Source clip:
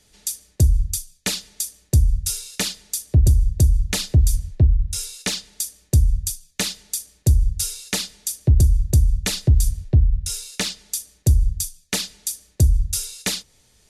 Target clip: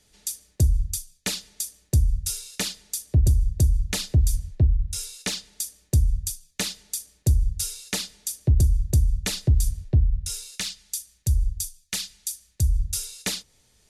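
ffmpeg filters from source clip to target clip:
ffmpeg -i in.wav -filter_complex "[0:a]asplit=3[link_01][link_02][link_03];[link_01]afade=type=out:start_time=10.56:duration=0.02[link_04];[link_02]equalizer=frequency=420:width=0.45:gain=-12.5,afade=type=in:start_time=10.56:duration=0.02,afade=type=out:start_time=12.75:duration=0.02[link_05];[link_03]afade=type=in:start_time=12.75:duration=0.02[link_06];[link_04][link_05][link_06]amix=inputs=3:normalize=0,volume=-4dB" out.wav

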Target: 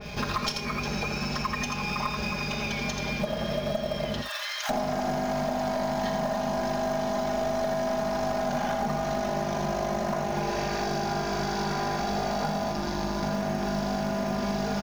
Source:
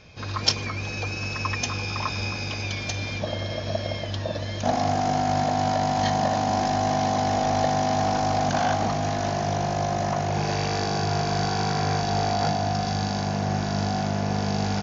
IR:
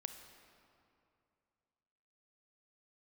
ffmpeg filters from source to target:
-filter_complex "[0:a]aecho=1:1:4.9:0.76,asettb=1/sr,asplit=3[link_01][link_02][link_03];[link_01]atrim=end=12.724[link_04];[link_02]atrim=start=12.72:end=13.23,asetpts=PTS-STARTPTS,afade=type=in:duration=0.004:curve=qsin,afade=type=out:start_time=0.506:duration=0.004:curve=qsin,tremolo=f=150:d=0.71[link_05];[link_03]atrim=start=13.226[link_06];[link_04][link_05]acrossfade=duration=0.004:curve1=hsin:curve2=qsin[link_07];[link_07][link_06]acrossfade=duration=0.004:curve1=qsin:curve2=hsin,aecho=1:1:83|355|875:0.473|0.119|0.15,aeval=exprs='0.75*(cos(1*acos(clip(val(0)/0.75,-1,1)))-cos(1*PI/2))+0.0237*(cos(5*acos(clip(val(0)/0.75,-1,1)))-cos(5*PI/2))+0.0531*(cos(6*acos(clip(val(0)/0.75,-1,1)))-cos(6*PI/2))+0.0106*(cos(7*acos(clip(val(0)/0.75,-1,1)))-cos(7*PI/2))':channel_layout=same,acontrast=40,acrusher=bits=5:mode=log:mix=0:aa=0.000001,asplit=3[link_08][link_09][link_10];[link_08]afade=type=out:start_time=4.21:duration=0.02[link_11];[link_09]highpass=frequency=1200:width=0.5412,highpass=frequency=1200:width=1.3066,afade=type=in:start_time=4.21:duration=0.02,afade=type=out:start_time=4.69:duration=0.02[link_12];[link_10]afade=type=in:start_time=4.69:duration=0.02[link_13];[link_11][link_12][link_13]amix=inputs=3:normalize=0[link_14];[1:a]atrim=start_sample=2205,atrim=end_sample=3528[link_15];[link_14][link_15]afir=irnorm=-1:irlink=0,acompressor=threshold=-34dB:ratio=6,adynamicequalizer=threshold=0.00316:dfrequency=2300:dqfactor=0.7:tfrequency=2300:tqfactor=0.7:attack=5:release=100:ratio=0.375:range=2.5:mode=cutabove:tftype=highshelf,volume=7.5dB"

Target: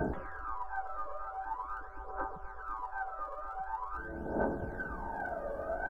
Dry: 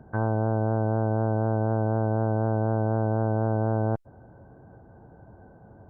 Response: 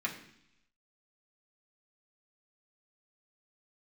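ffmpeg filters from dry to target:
-filter_complex "[0:a]equalizer=frequency=970:width_type=o:width=0.67:gain=-5,aecho=1:1:3.2:0.54,acrossover=split=300|640[link_01][link_02][link_03];[link_03]alimiter=level_in=9.5dB:limit=-24dB:level=0:latency=1,volume=-9.5dB[link_04];[link_01][link_02][link_04]amix=inputs=3:normalize=0,acompressor=threshold=-40dB:ratio=3[link_05];[1:a]atrim=start_sample=2205,asetrate=27783,aresample=44100[link_06];[link_05][link_06]afir=irnorm=-1:irlink=0,afftfilt=real='re*lt(hypot(re,im),0.0224)':imag='im*lt(hypot(re,im),0.0224)':win_size=1024:overlap=0.75,aphaser=in_gain=1:out_gain=1:delay=1.8:decay=0.79:speed=0.45:type=triangular,aecho=1:1:114:0.126,volume=10dB"

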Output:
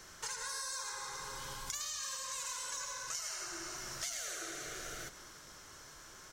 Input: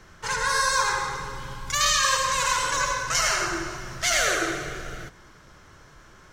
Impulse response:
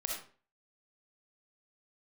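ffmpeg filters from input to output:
-filter_complex "[0:a]bass=frequency=250:gain=-7,treble=frequency=4000:gain=13,acompressor=threshold=-36dB:ratio=6,asplit=7[link_01][link_02][link_03][link_04][link_05][link_06][link_07];[link_02]adelay=153,afreqshift=-54,volume=-17dB[link_08];[link_03]adelay=306,afreqshift=-108,volume=-21.3dB[link_09];[link_04]adelay=459,afreqshift=-162,volume=-25.6dB[link_10];[link_05]adelay=612,afreqshift=-216,volume=-29.9dB[link_11];[link_06]adelay=765,afreqshift=-270,volume=-34.2dB[link_12];[link_07]adelay=918,afreqshift=-324,volume=-38.5dB[link_13];[link_01][link_08][link_09][link_10][link_11][link_12][link_13]amix=inputs=7:normalize=0,volume=-4.5dB"

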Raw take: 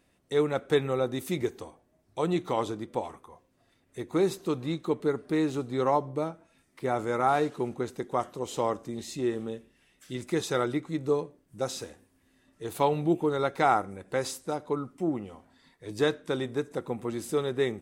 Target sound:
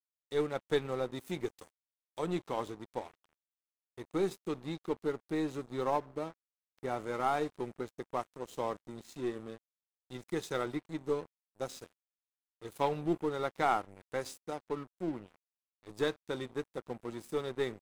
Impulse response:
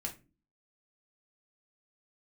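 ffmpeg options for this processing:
-filter_complex "[0:a]aeval=exprs='0.299*(cos(1*acos(clip(val(0)/0.299,-1,1)))-cos(1*PI/2))+0.015*(cos(3*acos(clip(val(0)/0.299,-1,1)))-cos(3*PI/2))+0.0133*(cos(4*acos(clip(val(0)/0.299,-1,1)))-cos(4*PI/2))':channel_layout=same,asettb=1/sr,asplit=3[link_01][link_02][link_03];[link_01]atrim=end=1.554[link_04];[link_02]atrim=start=1.55:end=2.19,asetpts=PTS-STARTPTS,afade=type=in:duration=0.004:curve=qsin,afade=type=out:start_time=0.636:duration=0.004:curve=qsin,bass=frequency=250:gain=-5,treble=frequency=4000:gain=11[link_05];[link_03]atrim=start=2.186[link_06];[link_04][link_05]acrossfade=duration=0.004:curve1=hsin:curve2=qsin[link_07];[link_07][link_06]acrossfade=duration=0.004:curve1=qsin:curve2=hsin,aeval=exprs='sgn(val(0))*max(abs(val(0))-0.0075,0)':channel_layout=same,volume=-4.5dB"

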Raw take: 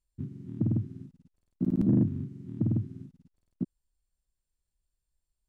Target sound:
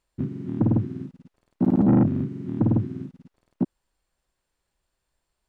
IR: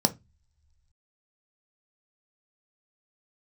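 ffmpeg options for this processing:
-filter_complex "[0:a]asplit=2[link_01][link_02];[link_02]highpass=frequency=720:poles=1,volume=23dB,asoftclip=type=tanh:threshold=-14dB[link_03];[link_01][link_03]amix=inputs=2:normalize=0,lowpass=frequency=1200:poles=1,volume=-6dB,volume=4.5dB"

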